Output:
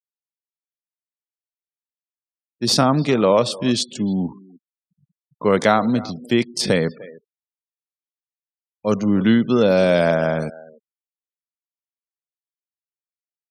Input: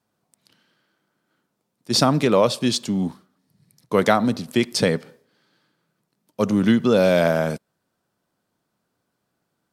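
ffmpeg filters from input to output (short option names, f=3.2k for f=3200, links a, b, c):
-filter_complex "[0:a]atempo=0.72,asplit=2[a][b];[b]adelay=300,highpass=300,lowpass=3.4k,asoftclip=type=hard:threshold=-11dB,volume=-18dB[c];[a][c]amix=inputs=2:normalize=0,afftfilt=real='re*gte(hypot(re,im),0.0126)':imag='im*gte(hypot(re,im),0.0126)':win_size=1024:overlap=0.75,volume=1dB"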